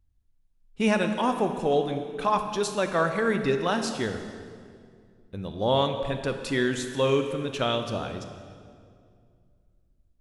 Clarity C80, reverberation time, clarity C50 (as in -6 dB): 8.5 dB, 2.2 s, 7.5 dB